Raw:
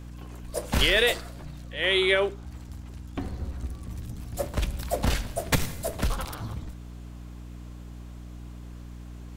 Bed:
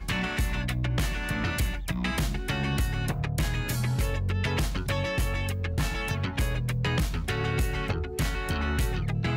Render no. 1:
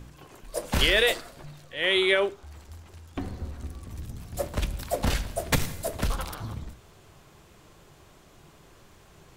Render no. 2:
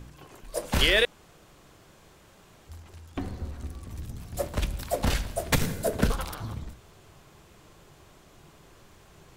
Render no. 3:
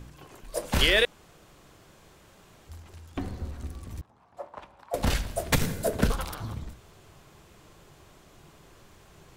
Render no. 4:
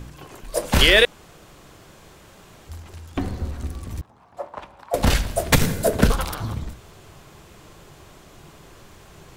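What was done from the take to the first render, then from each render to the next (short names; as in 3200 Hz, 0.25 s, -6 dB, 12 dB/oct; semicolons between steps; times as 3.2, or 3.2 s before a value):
de-hum 60 Hz, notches 5
1.05–2.69 room tone; 5.61–6.12 small resonant body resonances 210/430/1500 Hz, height 9 dB, ringing for 20 ms
4.01–4.94 band-pass 920 Hz, Q 2.7
gain +7.5 dB; limiter -2 dBFS, peak gain reduction 1 dB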